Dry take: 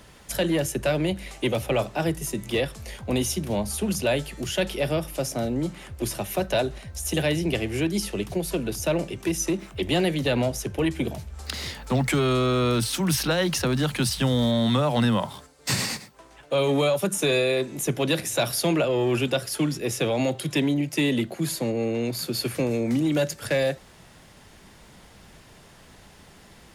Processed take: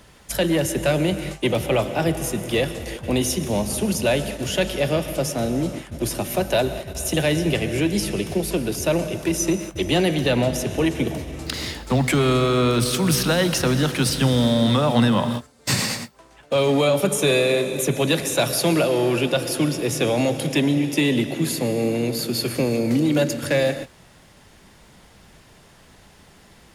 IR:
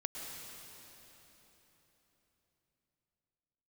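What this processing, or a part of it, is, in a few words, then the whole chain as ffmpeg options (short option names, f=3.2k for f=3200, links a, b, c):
keyed gated reverb: -filter_complex "[0:a]asplit=3[a][b][c];[1:a]atrim=start_sample=2205[d];[b][d]afir=irnorm=-1:irlink=0[e];[c]apad=whole_len=1179400[f];[e][f]sidechaingate=range=-33dB:threshold=-38dB:ratio=16:detection=peak,volume=-4dB[g];[a][g]amix=inputs=2:normalize=0,asettb=1/sr,asplit=3[h][i][j];[h]atrim=end=18.874[k];[i]atrim=start=18.87:end=19.36,asetpts=PTS-STARTPTS,afade=t=in:d=0.004:c=qsin,afade=t=out:st=0.486:d=0.004:c=qsin,bass=f=250:g=-3,treble=f=4k:g=-2[l];[j]atrim=start=19.356[m];[k][l]acrossfade=d=0.004:c1=hsin:c2=qsin[n];[n][m]acrossfade=d=0.004:c1=qsin:c2=hsin"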